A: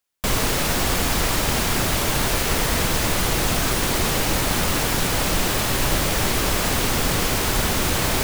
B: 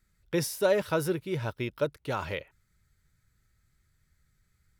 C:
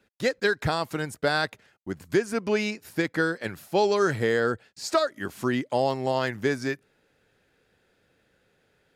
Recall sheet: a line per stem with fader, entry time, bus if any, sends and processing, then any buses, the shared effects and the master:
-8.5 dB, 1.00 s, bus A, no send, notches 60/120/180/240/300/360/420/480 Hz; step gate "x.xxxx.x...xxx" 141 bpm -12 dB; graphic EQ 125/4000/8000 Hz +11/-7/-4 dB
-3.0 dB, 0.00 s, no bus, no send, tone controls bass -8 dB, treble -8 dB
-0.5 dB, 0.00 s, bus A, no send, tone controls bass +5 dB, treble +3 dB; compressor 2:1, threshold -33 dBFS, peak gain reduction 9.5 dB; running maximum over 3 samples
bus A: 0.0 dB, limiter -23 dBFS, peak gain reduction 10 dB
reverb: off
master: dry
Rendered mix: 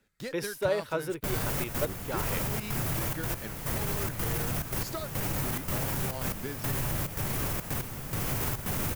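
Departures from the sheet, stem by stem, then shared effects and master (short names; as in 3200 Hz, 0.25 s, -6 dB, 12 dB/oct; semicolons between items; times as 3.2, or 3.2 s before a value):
stem C -0.5 dB -> -7.5 dB; master: extra high shelf 7500 Hz +8 dB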